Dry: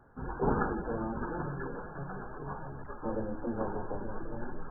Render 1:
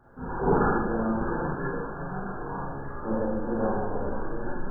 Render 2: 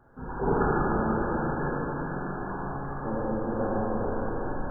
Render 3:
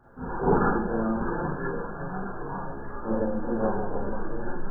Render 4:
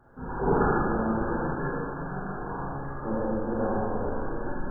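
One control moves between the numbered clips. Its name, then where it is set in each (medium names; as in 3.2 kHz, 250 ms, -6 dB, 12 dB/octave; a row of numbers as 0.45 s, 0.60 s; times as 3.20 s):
Schroeder reverb, RT60: 0.73 s, 4.3 s, 0.31 s, 1.7 s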